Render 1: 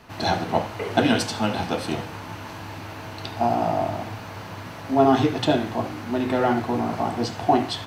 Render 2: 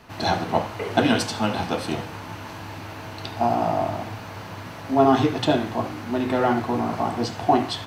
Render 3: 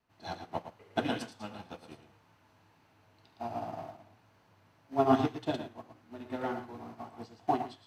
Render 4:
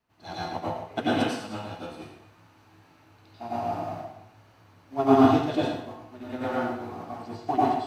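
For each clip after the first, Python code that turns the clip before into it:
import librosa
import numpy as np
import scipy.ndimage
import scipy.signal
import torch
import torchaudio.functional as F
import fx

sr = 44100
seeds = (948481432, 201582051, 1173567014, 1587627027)

y1 = fx.dynamic_eq(x, sr, hz=1100.0, q=3.8, threshold_db=-37.0, ratio=4.0, max_db=3)
y2 = fx.vibrato(y1, sr, rate_hz=1.9, depth_cents=29.0)
y2 = y2 + 10.0 ** (-4.5 / 20.0) * np.pad(y2, (int(113 * sr / 1000.0), 0))[:len(y2)]
y2 = fx.upward_expand(y2, sr, threshold_db=-28.0, expansion=2.5)
y2 = y2 * 10.0 ** (-7.0 / 20.0)
y3 = fx.rev_plate(y2, sr, seeds[0], rt60_s=0.61, hf_ratio=0.95, predelay_ms=80, drr_db=-7.0)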